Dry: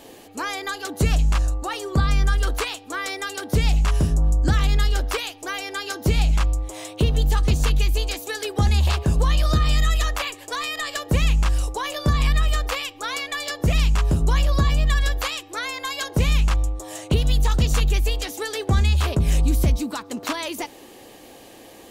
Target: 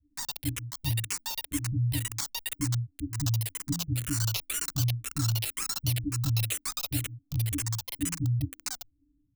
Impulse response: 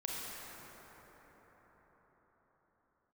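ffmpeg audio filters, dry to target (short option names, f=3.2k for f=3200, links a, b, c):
-filter_complex "[0:a]asetrate=103194,aresample=44100,acrossover=split=110|2100[a][b][c];[a]asplit=2[d][e];[e]adelay=14,volume=-12dB[f];[d][f]amix=inputs=2:normalize=0[g];[b]asuperpass=centerf=290:order=12:qfactor=7.4[h];[c]acrusher=bits=3:mix=0:aa=0.000001[i];[g][h][i]amix=inputs=3:normalize=0,asplit=2[j][k];[k]afreqshift=-2[l];[j][l]amix=inputs=2:normalize=1"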